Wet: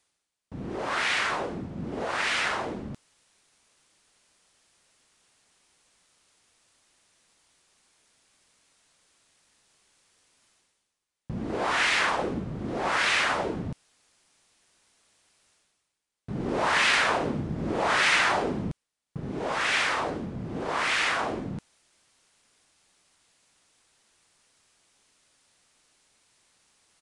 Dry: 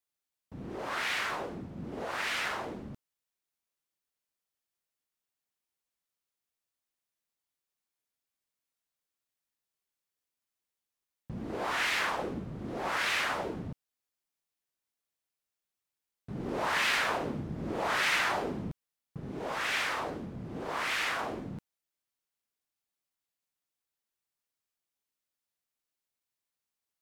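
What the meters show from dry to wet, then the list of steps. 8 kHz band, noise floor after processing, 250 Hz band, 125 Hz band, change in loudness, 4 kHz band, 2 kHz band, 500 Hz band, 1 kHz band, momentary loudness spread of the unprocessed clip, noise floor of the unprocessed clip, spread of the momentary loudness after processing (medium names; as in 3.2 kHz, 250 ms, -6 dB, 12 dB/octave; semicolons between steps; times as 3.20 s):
+6.0 dB, -81 dBFS, +6.0 dB, +6.0 dB, +5.5 dB, +6.0 dB, +6.0 dB, +6.0 dB, +6.0 dB, 17 LU, under -85 dBFS, 17 LU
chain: reverse; upward compressor, threshold -52 dBFS; reverse; resampled via 22.05 kHz; trim +6 dB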